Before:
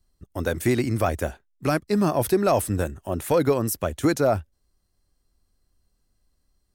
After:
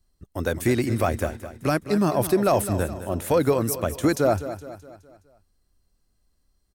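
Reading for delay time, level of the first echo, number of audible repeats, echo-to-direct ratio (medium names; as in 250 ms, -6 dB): 209 ms, -12.5 dB, 4, -11.5 dB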